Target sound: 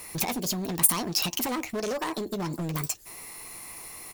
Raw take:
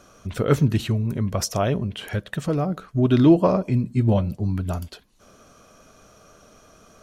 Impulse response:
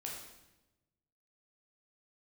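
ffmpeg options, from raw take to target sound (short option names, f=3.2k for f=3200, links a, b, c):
-filter_complex "[0:a]acompressor=threshold=-27dB:ratio=8,asetrate=74970,aresample=44100,asplit=2[a][b];[b]adelay=12,volume=-11dB[c];[a][c]amix=inputs=2:normalize=0,volume=27.5dB,asoftclip=hard,volume=-27.5dB,crystalizer=i=4.5:c=0"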